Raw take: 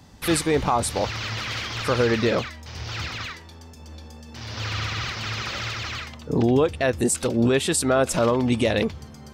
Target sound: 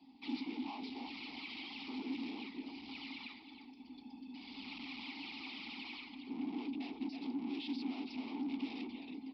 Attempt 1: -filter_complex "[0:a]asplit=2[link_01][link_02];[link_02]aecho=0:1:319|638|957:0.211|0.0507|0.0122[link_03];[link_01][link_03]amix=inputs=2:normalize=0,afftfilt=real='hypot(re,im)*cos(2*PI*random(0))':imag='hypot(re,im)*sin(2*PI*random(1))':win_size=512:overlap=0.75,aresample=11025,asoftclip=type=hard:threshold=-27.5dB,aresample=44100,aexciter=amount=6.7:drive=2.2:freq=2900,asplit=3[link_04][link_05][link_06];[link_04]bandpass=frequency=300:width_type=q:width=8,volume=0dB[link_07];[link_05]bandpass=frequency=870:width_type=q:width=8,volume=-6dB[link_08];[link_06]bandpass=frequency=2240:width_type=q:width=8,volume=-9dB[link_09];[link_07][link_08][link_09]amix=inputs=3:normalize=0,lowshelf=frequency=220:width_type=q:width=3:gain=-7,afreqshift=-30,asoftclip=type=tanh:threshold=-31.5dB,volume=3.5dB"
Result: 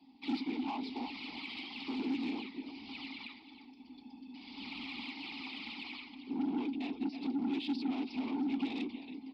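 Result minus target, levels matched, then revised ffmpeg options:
hard clipping: distortion −5 dB
-filter_complex "[0:a]asplit=2[link_01][link_02];[link_02]aecho=0:1:319|638|957:0.211|0.0507|0.0122[link_03];[link_01][link_03]amix=inputs=2:normalize=0,afftfilt=real='hypot(re,im)*cos(2*PI*random(0))':imag='hypot(re,im)*sin(2*PI*random(1))':win_size=512:overlap=0.75,aresample=11025,asoftclip=type=hard:threshold=-36.5dB,aresample=44100,aexciter=amount=6.7:drive=2.2:freq=2900,asplit=3[link_04][link_05][link_06];[link_04]bandpass=frequency=300:width_type=q:width=8,volume=0dB[link_07];[link_05]bandpass=frequency=870:width_type=q:width=8,volume=-6dB[link_08];[link_06]bandpass=frequency=2240:width_type=q:width=8,volume=-9dB[link_09];[link_07][link_08][link_09]amix=inputs=3:normalize=0,lowshelf=frequency=220:width_type=q:width=3:gain=-7,afreqshift=-30,asoftclip=type=tanh:threshold=-31.5dB,volume=3.5dB"

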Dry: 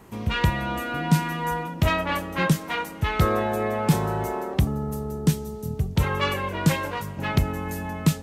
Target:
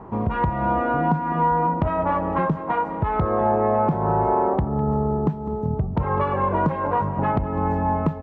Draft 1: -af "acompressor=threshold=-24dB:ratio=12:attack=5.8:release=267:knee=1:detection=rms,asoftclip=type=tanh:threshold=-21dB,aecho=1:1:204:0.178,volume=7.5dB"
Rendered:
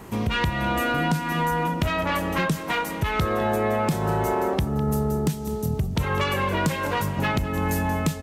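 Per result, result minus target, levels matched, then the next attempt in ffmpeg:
soft clipping: distortion +18 dB; 1,000 Hz band −3.0 dB
-af "acompressor=threshold=-24dB:ratio=12:attack=5.8:release=267:knee=1:detection=rms,asoftclip=type=tanh:threshold=-10dB,aecho=1:1:204:0.178,volume=7.5dB"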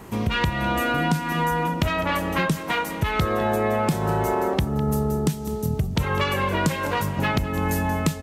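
1,000 Hz band −3.5 dB
-af "acompressor=threshold=-24dB:ratio=12:attack=5.8:release=267:knee=1:detection=rms,lowpass=frequency=950:width_type=q:width=1.9,asoftclip=type=tanh:threshold=-10dB,aecho=1:1:204:0.178,volume=7.5dB"

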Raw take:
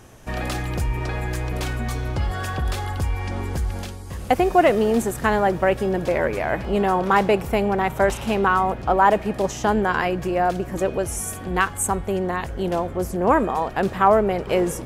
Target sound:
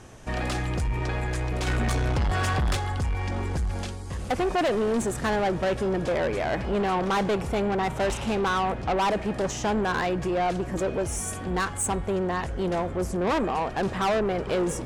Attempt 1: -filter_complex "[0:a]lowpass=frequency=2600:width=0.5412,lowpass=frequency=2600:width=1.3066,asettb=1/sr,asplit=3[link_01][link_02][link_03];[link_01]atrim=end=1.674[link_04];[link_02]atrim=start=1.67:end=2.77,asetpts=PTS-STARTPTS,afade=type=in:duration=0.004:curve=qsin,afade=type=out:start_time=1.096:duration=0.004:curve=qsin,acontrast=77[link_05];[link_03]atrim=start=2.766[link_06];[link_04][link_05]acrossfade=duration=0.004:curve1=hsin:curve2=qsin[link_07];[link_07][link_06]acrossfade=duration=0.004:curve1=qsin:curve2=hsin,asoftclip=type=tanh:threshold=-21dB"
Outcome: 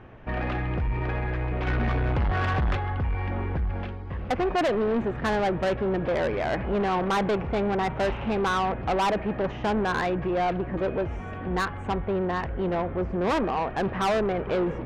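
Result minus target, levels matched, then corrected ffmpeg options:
8,000 Hz band −14.5 dB
-filter_complex "[0:a]lowpass=frequency=9800:width=0.5412,lowpass=frequency=9800:width=1.3066,asettb=1/sr,asplit=3[link_01][link_02][link_03];[link_01]atrim=end=1.674[link_04];[link_02]atrim=start=1.67:end=2.77,asetpts=PTS-STARTPTS,afade=type=in:duration=0.004:curve=qsin,afade=type=out:start_time=1.096:duration=0.004:curve=qsin,acontrast=77[link_05];[link_03]atrim=start=2.766[link_06];[link_04][link_05]acrossfade=duration=0.004:curve1=hsin:curve2=qsin[link_07];[link_07][link_06]acrossfade=duration=0.004:curve1=qsin:curve2=hsin,asoftclip=type=tanh:threshold=-21dB"

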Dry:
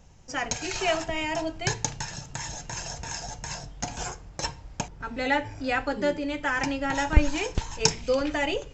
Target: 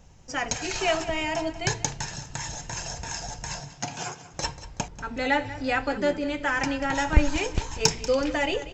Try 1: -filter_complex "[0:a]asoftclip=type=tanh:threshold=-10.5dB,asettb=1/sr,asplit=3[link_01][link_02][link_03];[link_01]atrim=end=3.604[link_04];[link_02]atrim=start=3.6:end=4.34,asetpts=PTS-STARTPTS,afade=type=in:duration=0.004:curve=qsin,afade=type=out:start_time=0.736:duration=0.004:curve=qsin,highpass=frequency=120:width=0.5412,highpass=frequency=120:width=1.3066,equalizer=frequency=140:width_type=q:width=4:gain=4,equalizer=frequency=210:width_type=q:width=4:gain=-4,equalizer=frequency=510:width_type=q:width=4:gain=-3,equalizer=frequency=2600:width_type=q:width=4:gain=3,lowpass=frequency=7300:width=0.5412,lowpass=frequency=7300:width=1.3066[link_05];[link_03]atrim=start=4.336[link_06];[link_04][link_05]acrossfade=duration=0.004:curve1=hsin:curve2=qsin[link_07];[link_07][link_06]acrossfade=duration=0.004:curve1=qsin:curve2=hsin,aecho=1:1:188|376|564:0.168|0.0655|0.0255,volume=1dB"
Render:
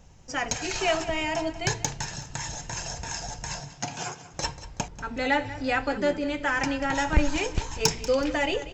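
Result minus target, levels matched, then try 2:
soft clipping: distortion +11 dB
-filter_complex "[0:a]asoftclip=type=tanh:threshold=-2.5dB,asettb=1/sr,asplit=3[link_01][link_02][link_03];[link_01]atrim=end=3.604[link_04];[link_02]atrim=start=3.6:end=4.34,asetpts=PTS-STARTPTS,afade=type=in:duration=0.004:curve=qsin,afade=type=out:start_time=0.736:duration=0.004:curve=qsin,highpass=frequency=120:width=0.5412,highpass=frequency=120:width=1.3066,equalizer=frequency=140:width_type=q:width=4:gain=4,equalizer=frequency=210:width_type=q:width=4:gain=-4,equalizer=frequency=510:width_type=q:width=4:gain=-3,equalizer=frequency=2600:width_type=q:width=4:gain=3,lowpass=frequency=7300:width=0.5412,lowpass=frequency=7300:width=1.3066[link_05];[link_03]atrim=start=4.336[link_06];[link_04][link_05]acrossfade=duration=0.004:curve1=hsin:curve2=qsin[link_07];[link_07][link_06]acrossfade=duration=0.004:curve1=qsin:curve2=hsin,aecho=1:1:188|376|564:0.168|0.0655|0.0255,volume=1dB"

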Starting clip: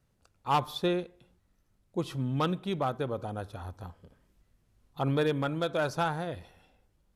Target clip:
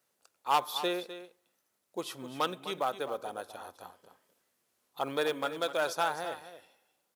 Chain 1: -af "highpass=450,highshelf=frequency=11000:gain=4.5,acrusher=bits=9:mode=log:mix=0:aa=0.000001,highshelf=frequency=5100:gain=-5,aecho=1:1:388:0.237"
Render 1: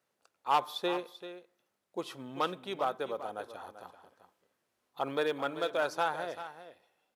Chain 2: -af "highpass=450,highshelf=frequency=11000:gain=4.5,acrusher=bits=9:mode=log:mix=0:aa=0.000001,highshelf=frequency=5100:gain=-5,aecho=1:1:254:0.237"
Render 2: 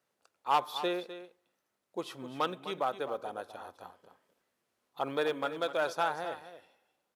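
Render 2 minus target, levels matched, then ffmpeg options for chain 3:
8,000 Hz band −7.0 dB
-af "highpass=450,highshelf=frequency=11000:gain=4.5,acrusher=bits=9:mode=log:mix=0:aa=0.000001,highshelf=frequency=5100:gain=6,aecho=1:1:254:0.237"

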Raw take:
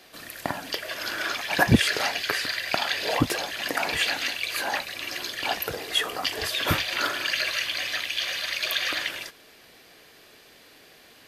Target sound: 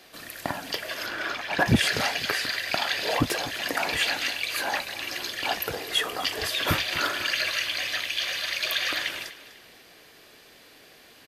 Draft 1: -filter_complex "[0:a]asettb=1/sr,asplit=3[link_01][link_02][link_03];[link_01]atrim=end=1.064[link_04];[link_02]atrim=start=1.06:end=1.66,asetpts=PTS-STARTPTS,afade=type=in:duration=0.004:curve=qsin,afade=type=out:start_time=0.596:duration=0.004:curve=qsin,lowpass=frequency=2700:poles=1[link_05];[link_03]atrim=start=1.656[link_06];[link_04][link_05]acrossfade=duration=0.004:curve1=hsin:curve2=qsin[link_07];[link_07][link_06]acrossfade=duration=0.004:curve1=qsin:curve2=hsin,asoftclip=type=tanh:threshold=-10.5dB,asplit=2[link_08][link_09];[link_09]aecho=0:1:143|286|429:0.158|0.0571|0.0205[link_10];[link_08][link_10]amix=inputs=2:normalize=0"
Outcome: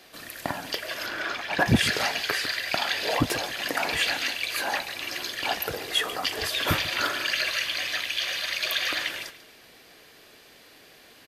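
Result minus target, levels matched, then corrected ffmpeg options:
echo 106 ms early
-filter_complex "[0:a]asettb=1/sr,asplit=3[link_01][link_02][link_03];[link_01]atrim=end=1.064[link_04];[link_02]atrim=start=1.06:end=1.66,asetpts=PTS-STARTPTS,afade=type=in:duration=0.004:curve=qsin,afade=type=out:start_time=0.596:duration=0.004:curve=qsin,lowpass=frequency=2700:poles=1[link_05];[link_03]atrim=start=1.656[link_06];[link_04][link_05]acrossfade=duration=0.004:curve1=hsin:curve2=qsin[link_07];[link_07][link_06]acrossfade=duration=0.004:curve1=qsin:curve2=hsin,asoftclip=type=tanh:threshold=-10.5dB,asplit=2[link_08][link_09];[link_09]aecho=0:1:249|498|747:0.158|0.0571|0.0205[link_10];[link_08][link_10]amix=inputs=2:normalize=0"

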